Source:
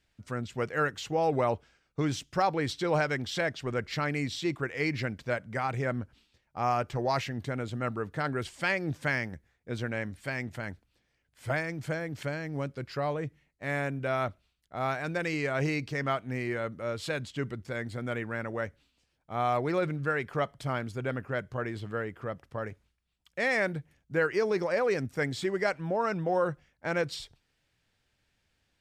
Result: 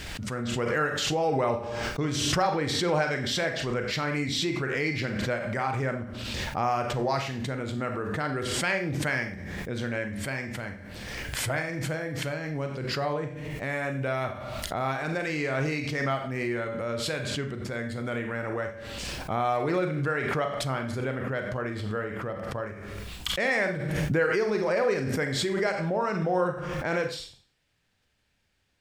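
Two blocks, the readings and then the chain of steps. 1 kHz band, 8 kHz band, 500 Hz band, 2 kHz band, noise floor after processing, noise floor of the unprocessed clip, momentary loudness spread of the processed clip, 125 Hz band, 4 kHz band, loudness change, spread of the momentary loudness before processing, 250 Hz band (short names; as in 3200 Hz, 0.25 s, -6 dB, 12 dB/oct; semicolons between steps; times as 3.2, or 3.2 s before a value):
+2.0 dB, +10.0 dB, +2.5 dB, +3.0 dB, -58 dBFS, -76 dBFS, 9 LU, +3.0 dB, +8.5 dB, +2.5 dB, 10 LU, +3.0 dB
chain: Schroeder reverb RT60 0.42 s, combs from 30 ms, DRR 4.5 dB; backwards sustainer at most 24 dB/s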